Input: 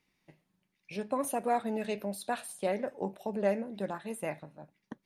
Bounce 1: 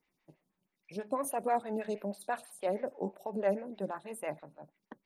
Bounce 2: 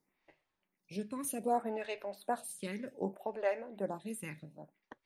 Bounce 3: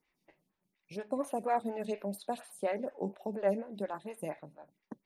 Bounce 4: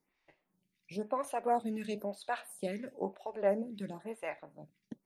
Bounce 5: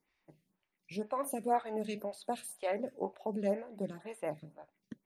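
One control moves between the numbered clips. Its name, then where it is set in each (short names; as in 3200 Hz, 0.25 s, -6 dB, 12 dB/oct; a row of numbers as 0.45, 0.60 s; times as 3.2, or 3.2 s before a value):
photocell phaser, rate: 6.2, 0.65, 4.2, 1, 2 Hz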